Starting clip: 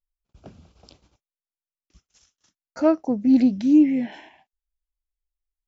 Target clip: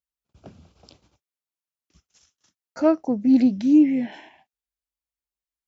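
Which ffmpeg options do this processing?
ffmpeg -i in.wav -af "highpass=frequency=64:width=0.5412,highpass=frequency=64:width=1.3066" out.wav

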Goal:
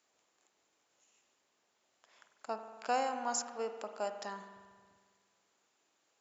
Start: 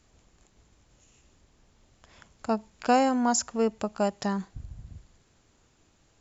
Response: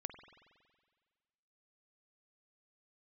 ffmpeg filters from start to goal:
-filter_complex "[0:a]highpass=500[link_01];[1:a]atrim=start_sample=2205[link_02];[link_01][link_02]afir=irnorm=-1:irlink=0,volume=-5dB"

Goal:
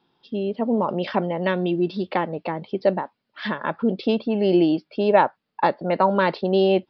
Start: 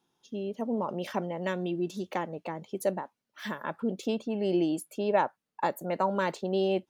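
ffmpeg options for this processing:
ffmpeg -i in.wav -af "aresample=11025,aresample=44100,volume=9dB" out.wav

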